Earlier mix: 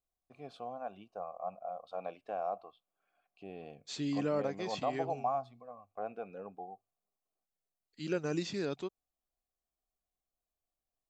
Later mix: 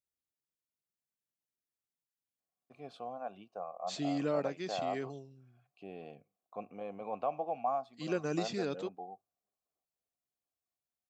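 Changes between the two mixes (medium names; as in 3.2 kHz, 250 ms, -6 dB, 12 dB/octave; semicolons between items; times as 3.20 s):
first voice: entry +2.40 s; master: add high-pass 110 Hz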